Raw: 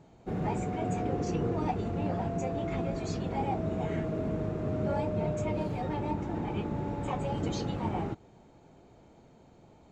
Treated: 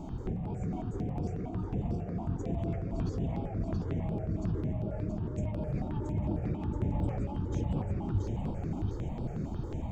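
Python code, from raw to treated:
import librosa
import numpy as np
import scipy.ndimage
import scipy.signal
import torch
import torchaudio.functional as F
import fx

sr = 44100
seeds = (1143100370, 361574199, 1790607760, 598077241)

p1 = fx.tilt_shelf(x, sr, db=3.0, hz=660.0)
p2 = fx.hum_notches(p1, sr, base_hz=50, count=3)
p3 = 10.0 ** (-34.5 / 20.0) * np.tanh(p2 / 10.0 ** (-34.5 / 20.0))
p4 = p2 + (p3 * librosa.db_to_amplitude(-4.0))
p5 = fx.over_compress(p4, sr, threshold_db=-38.0, ratio=-1.0)
p6 = fx.low_shelf(p5, sr, hz=170.0, db=11.5)
p7 = fx.notch(p6, sr, hz=4100.0, q=7.5)
p8 = p7 + fx.echo_feedback(p7, sr, ms=677, feedback_pct=50, wet_db=-4, dry=0)
y = fx.phaser_held(p8, sr, hz=11.0, low_hz=470.0, high_hz=6600.0)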